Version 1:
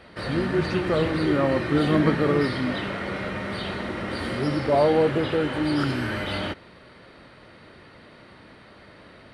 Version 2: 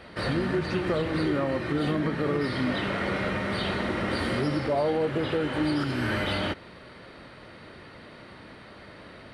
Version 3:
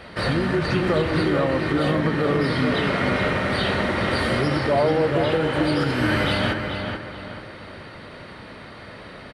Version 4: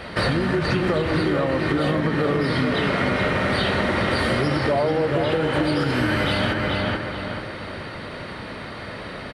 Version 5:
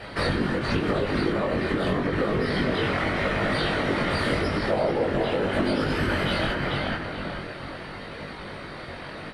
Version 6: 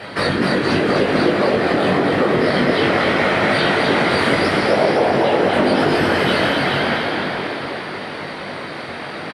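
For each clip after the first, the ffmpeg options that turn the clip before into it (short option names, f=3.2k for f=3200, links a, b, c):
-af "alimiter=limit=-19.5dB:level=0:latency=1:release=333,volume=2dB"
-filter_complex "[0:a]equalizer=f=310:t=o:w=0.77:g=-3,asplit=2[a][b];[b]adelay=432,lowpass=f=3.4k:p=1,volume=-5.5dB,asplit=2[c][d];[d]adelay=432,lowpass=f=3.4k:p=1,volume=0.39,asplit=2[e][f];[f]adelay=432,lowpass=f=3.4k:p=1,volume=0.39,asplit=2[g][h];[h]adelay=432,lowpass=f=3.4k:p=1,volume=0.39,asplit=2[i][j];[j]adelay=432,lowpass=f=3.4k:p=1,volume=0.39[k];[a][c][e][g][i][k]amix=inputs=6:normalize=0,volume=6dB"
-af "acompressor=threshold=-24dB:ratio=6,volume=6dB"
-af "afftfilt=real='hypot(re,im)*cos(2*PI*random(0))':imag='hypot(re,im)*sin(2*PI*random(1))':win_size=512:overlap=0.75,flanger=delay=19.5:depth=2.1:speed=0.85,volume=5.5dB"
-filter_complex "[0:a]highpass=130,asplit=2[a][b];[b]asplit=8[c][d][e][f][g][h][i][j];[c]adelay=255,afreqshift=95,volume=-3.5dB[k];[d]adelay=510,afreqshift=190,volume=-8.7dB[l];[e]adelay=765,afreqshift=285,volume=-13.9dB[m];[f]adelay=1020,afreqshift=380,volume=-19.1dB[n];[g]adelay=1275,afreqshift=475,volume=-24.3dB[o];[h]adelay=1530,afreqshift=570,volume=-29.5dB[p];[i]adelay=1785,afreqshift=665,volume=-34.7dB[q];[j]adelay=2040,afreqshift=760,volume=-39.8dB[r];[k][l][m][n][o][p][q][r]amix=inputs=8:normalize=0[s];[a][s]amix=inputs=2:normalize=0,volume=7dB"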